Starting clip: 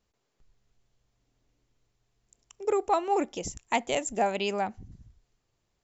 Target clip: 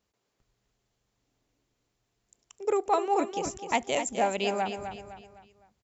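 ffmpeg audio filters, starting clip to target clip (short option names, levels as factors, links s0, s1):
-af "highpass=f=97:p=1,aecho=1:1:255|510|765|1020:0.376|0.15|0.0601|0.0241"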